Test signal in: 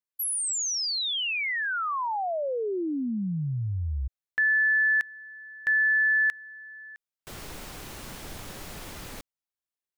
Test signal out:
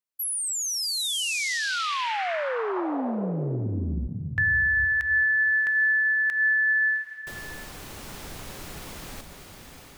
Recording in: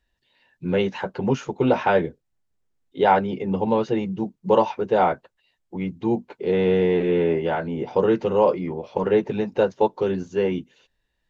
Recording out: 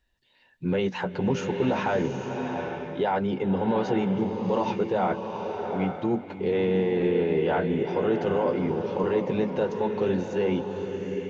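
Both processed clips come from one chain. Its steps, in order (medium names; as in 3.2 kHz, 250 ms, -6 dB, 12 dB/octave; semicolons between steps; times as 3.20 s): peak limiter -17 dBFS; swelling reverb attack 830 ms, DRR 4.5 dB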